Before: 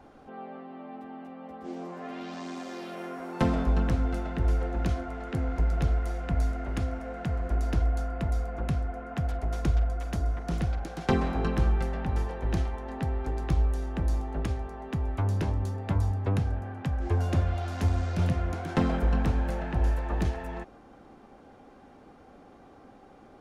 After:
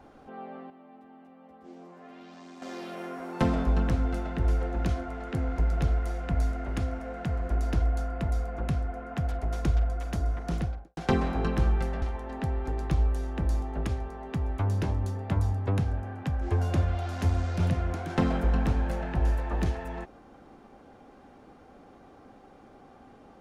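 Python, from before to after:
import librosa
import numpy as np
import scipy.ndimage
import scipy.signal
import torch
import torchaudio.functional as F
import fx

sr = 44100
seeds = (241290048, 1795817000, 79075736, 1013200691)

y = fx.studio_fade_out(x, sr, start_s=10.52, length_s=0.45)
y = fx.edit(y, sr, fx.clip_gain(start_s=0.7, length_s=1.92, db=-9.5),
    fx.cut(start_s=12.02, length_s=0.59), tone=tone)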